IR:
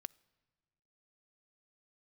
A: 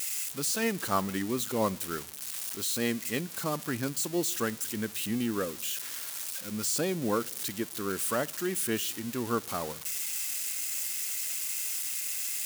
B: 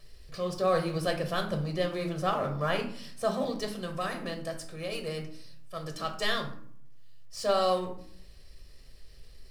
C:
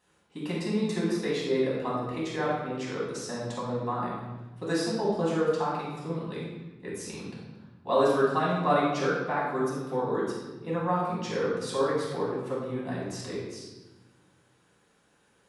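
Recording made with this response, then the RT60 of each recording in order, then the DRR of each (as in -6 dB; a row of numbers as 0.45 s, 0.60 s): A; 1.4 s, 0.55 s, 1.1 s; 18.0 dB, 3.5 dB, -7.5 dB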